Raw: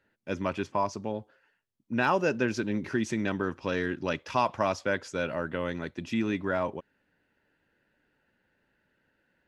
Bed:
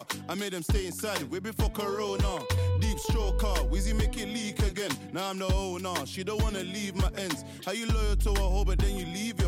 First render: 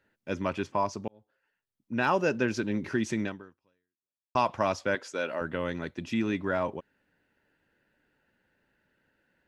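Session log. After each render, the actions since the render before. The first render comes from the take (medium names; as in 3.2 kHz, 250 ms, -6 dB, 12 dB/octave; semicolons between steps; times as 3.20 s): 1.08–2.15 s: fade in; 3.23–4.35 s: fade out exponential; 4.95–5.41 s: high-pass 300 Hz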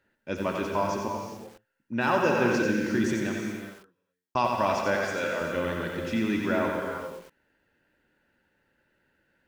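gated-style reverb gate 440 ms flat, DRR 2 dB; bit-crushed delay 90 ms, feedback 35%, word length 8-bit, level -5 dB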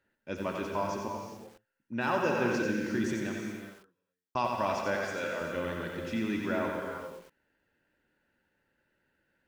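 trim -5 dB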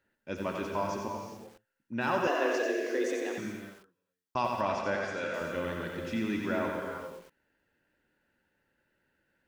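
2.27–3.38 s: frequency shift +140 Hz; 4.61–5.34 s: distance through air 62 m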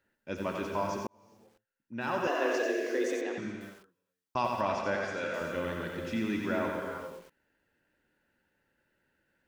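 1.07–2.56 s: fade in; 3.21–3.61 s: distance through air 100 m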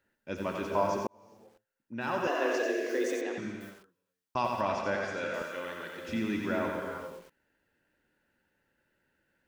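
0.71–1.95 s: peaking EQ 590 Hz +5.5 dB 1.7 oct; 2.89–3.71 s: treble shelf 12 kHz +8.5 dB; 5.42–6.09 s: high-pass 720 Hz 6 dB/octave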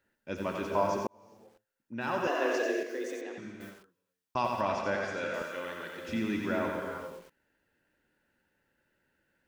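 2.83–3.60 s: gain -6 dB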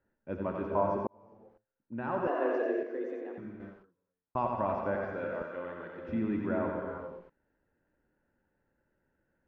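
low-pass 1.2 kHz 12 dB/octave; bass shelf 62 Hz +8 dB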